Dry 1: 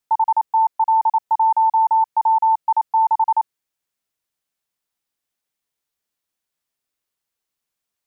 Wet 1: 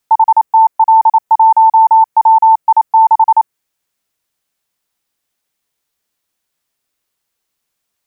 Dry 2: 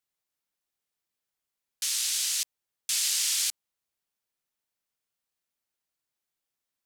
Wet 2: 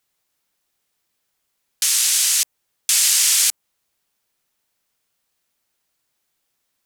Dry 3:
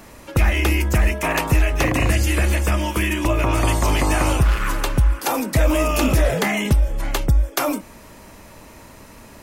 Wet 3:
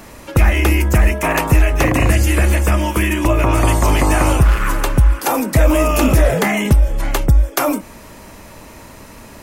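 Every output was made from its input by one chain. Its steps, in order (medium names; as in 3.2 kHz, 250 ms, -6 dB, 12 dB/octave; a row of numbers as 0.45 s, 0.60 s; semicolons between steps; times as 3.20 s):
dynamic bell 4 kHz, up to -5 dB, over -39 dBFS, Q 0.98; peak normalisation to -3 dBFS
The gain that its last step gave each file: +9.0 dB, +13.0 dB, +5.0 dB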